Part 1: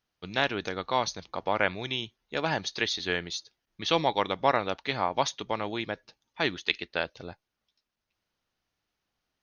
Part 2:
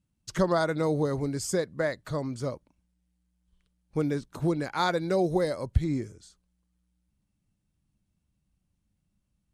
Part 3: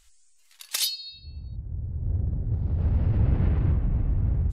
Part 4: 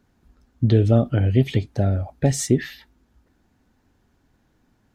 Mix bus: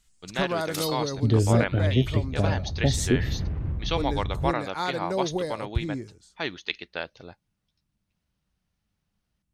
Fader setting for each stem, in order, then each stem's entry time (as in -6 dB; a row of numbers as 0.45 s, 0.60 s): -3.0 dB, -3.0 dB, -6.5 dB, -4.5 dB; 0.00 s, 0.00 s, 0.00 s, 0.60 s